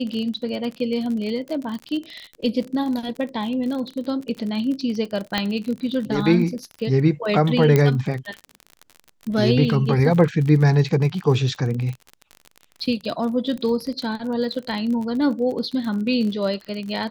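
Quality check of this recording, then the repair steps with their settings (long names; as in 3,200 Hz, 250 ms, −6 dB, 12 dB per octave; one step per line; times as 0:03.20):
surface crackle 39 per second −28 dBFS
0:05.38: click −7 dBFS
0:07.76: click −5 dBFS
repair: click removal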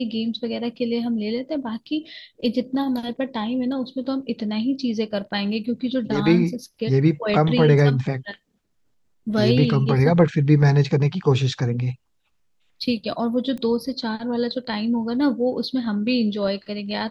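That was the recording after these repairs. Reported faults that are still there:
none of them is left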